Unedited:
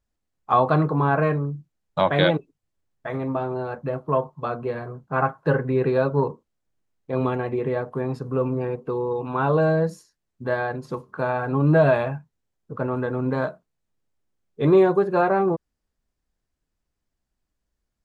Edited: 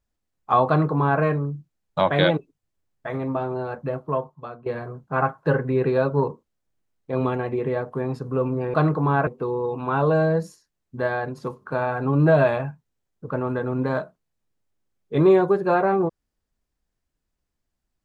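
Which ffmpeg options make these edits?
-filter_complex "[0:a]asplit=4[s0][s1][s2][s3];[s0]atrim=end=4.66,asetpts=PTS-STARTPTS,afade=t=out:st=3.89:d=0.77:silence=0.16788[s4];[s1]atrim=start=4.66:end=8.742,asetpts=PTS-STARTPTS,afade=t=in:d=0.004:c=hsin:silence=0.16788[s5];[s2]atrim=start=0.678:end=1.212[s6];[s3]atrim=start=8.738[s7];[s4][s5]concat=n=2:v=0:a=1[s8];[s8][s6]acrossfade=d=0.004:c1=hsin:c2=hsin[s9];[s9][s7]acrossfade=d=0.004:c1=hsin:c2=hsin"

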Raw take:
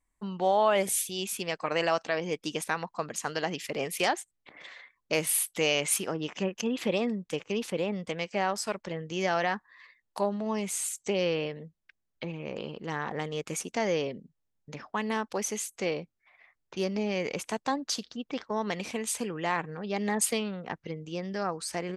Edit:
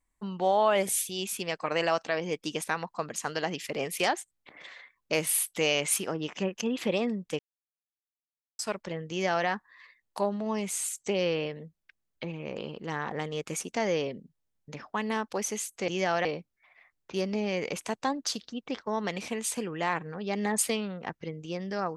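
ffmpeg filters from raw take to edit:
-filter_complex "[0:a]asplit=5[s0][s1][s2][s3][s4];[s0]atrim=end=7.39,asetpts=PTS-STARTPTS,afade=t=out:st=7.386:d=0.004:c=hsin[s5];[s1]atrim=start=7.39:end=8.59,asetpts=PTS-STARTPTS,volume=0[s6];[s2]atrim=start=8.59:end=15.882,asetpts=PTS-STARTPTS,afade=t=in:d=0.004:c=hsin[s7];[s3]atrim=start=9.098:end=9.472[s8];[s4]atrim=start=15.878[s9];[s5][s6][s7]concat=n=3:v=0:a=1[s10];[s10][s8]acrossfade=d=0.004:c1=hsin:c2=hsin[s11];[s11][s9]acrossfade=d=0.004:c1=hsin:c2=hsin"

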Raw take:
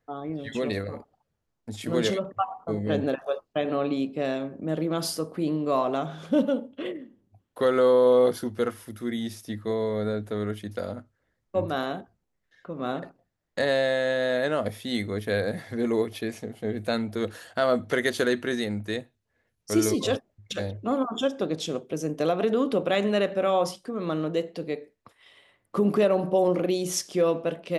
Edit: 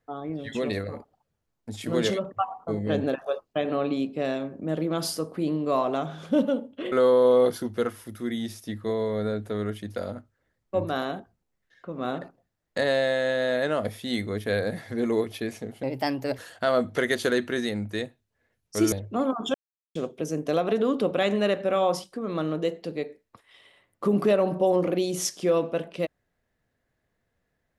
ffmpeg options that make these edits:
-filter_complex "[0:a]asplit=7[s0][s1][s2][s3][s4][s5][s6];[s0]atrim=end=6.922[s7];[s1]atrim=start=7.728:end=16.644[s8];[s2]atrim=start=16.64:end=17.33,asetpts=PTS-STARTPTS,asetrate=55125,aresample=44100,atrim=end_sample=24343,asetpts=PTS-STARTPTS[s9];[s3]atrim=start=17.326:end=19.872[s10];[s4]atrim=start=20.638:end=21.26,asetpts=PTS-STARTPTS,afade=t=out:st=0.618:d=0.004:c=hsin[s11];[s5]atrim=start=21.26:end=21.67,asetpts=PTS-STARTPTS,volume=0[s12];[s6]atrim=start=21.67,asetpts=PTS-STARTPTS,afade=t=in:d=0.004:c=hsin[s13];[s7][s8]acrossfade=d=0.004:c1=hsin:c2=hsin[s14];[s14][s9]acrossfade=d=0.004:c1=hsin:c2=hsin[s15];[s15][s10]acrossfade=d=0.004:c1=hsin:c2=hsin[s16];[s11][s12][s13]concat=n=3:v=0:a=1[s17];[s16][s17]acrossfade=d=0.004:c1=hsin:c2=hsin"

